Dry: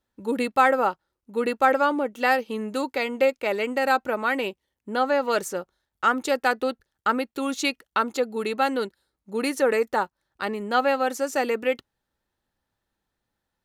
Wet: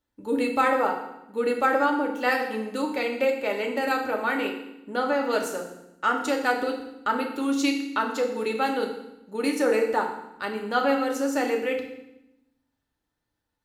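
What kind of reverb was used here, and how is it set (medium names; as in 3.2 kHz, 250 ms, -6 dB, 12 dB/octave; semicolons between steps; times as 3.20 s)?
FDN reverb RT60 0.86 s, low-frequency decay 1.5×, high-frequency decay 0.95×, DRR 1 dB; trim -4 dB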